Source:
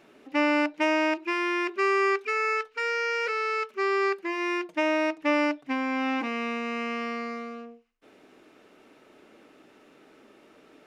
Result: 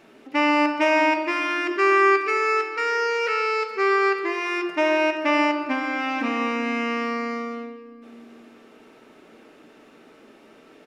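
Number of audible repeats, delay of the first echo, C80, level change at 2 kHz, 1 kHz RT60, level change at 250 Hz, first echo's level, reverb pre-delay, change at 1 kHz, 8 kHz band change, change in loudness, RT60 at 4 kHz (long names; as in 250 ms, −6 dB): 1, 139 ms, 8.0 dB, +5.0 dB, 2.2 s, +3.5 dB, −17.0 dB, 4 ms, +6.5 dB, can't be measured, +5.0 dB, 1.4 s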